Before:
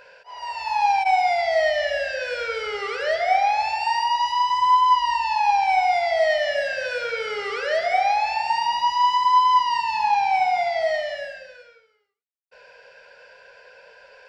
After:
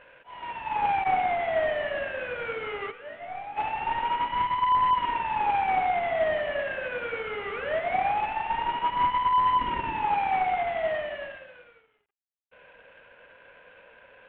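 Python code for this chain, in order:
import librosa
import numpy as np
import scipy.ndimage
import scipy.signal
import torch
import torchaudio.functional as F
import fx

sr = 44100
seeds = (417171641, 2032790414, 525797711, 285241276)

y = fx.cvsd(x, sr, bps=16000)
y = fx.resonator_bank(y, sr, root=43, chord='minor', decay_s=0.27, at=(2.9, 3.56), fade=0.02)
y = fx.low_shelf_res(y, sr, hz=470.0, db=7.0, q=1.5, at=(9.57, 10.03))
y = y * librosa.db_to_amplitude(-4.5)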